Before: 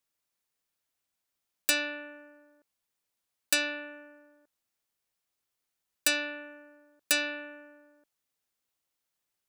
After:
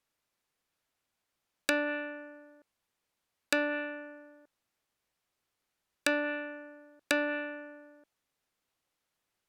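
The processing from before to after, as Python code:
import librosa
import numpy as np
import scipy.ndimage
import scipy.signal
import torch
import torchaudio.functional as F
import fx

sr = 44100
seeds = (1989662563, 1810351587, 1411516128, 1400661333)

y = fx.env_lowpass_down(x, sr, base_hz=1300.0, full_db=-26.0)
y = fx.high_shelf(y, sr, hz=4500.0, db=-9.5)
y = y * librosa.db_to_amplitude(6.0)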